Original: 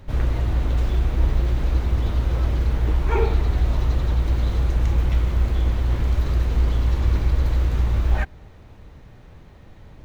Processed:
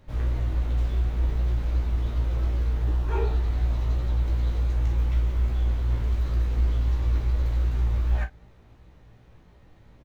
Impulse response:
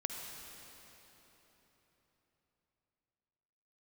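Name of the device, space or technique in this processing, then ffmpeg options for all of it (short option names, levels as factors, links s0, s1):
double-tracked vocal: -filter_complex "[0:a]asplit=2[s0][s1];[s1]adelay=34,volume=0.299[s2];[s0][s2]amix=inputs=2:normalize=0,flanger=delay=16:depth=2.5:speed=2.7,asettb=1/sr,asplit=3[s3][s4][s5];[s3]atrim=end=2.834[s6];[s4]atrim=start=2.83:end=3.41,asetpts=PTS-STARTPTS,afade=t=in:d=0.004:c=qsin,afade=t=out:st=0.576:d=0.004:c=qsin,bandreject=f=2200:w=6.6[s7];[s5]atrim=start=3.406[s8];[s6][s7]acrossfade=d=0.004:c1=hsin:c2=qsin[s9];[s9][s8]acrossfade=d=0.004:c1=qsin:c2=hsin,volume=0.562"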